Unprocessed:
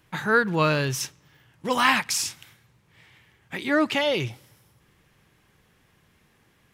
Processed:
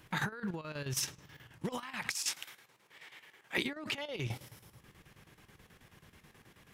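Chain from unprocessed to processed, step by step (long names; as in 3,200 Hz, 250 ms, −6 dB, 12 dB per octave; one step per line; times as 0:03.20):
0:02.14–0:03.58: high-pass filter 390 Hz 12 dB per octave
compressor whose output falls as the input rises −33 dBFS, ratio −1
square-wave tremolo 9.3 Hz, depth 65%, duty 70%
level −4.5 dB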